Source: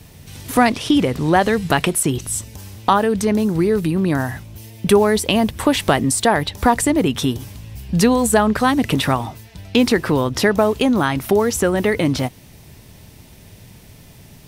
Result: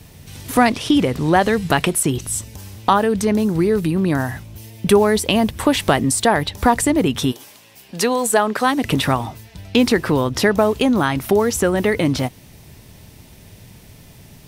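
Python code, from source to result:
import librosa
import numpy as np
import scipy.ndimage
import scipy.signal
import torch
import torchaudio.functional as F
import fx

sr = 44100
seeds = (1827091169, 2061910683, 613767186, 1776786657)

y = fx.highpass(x, sr, hz=fx.line((7.31, 550.0), (8.83, 260.0)), slope=12, at=(7.31, 8.83), fade=0.02)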